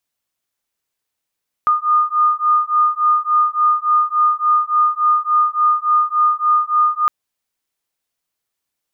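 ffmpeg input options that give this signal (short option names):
-f lavfi -i "aevalsrc='0.168*(sin(2*PI*1220*t)+sin(2*PI*1223.5*t))':d=5.41:s=44100"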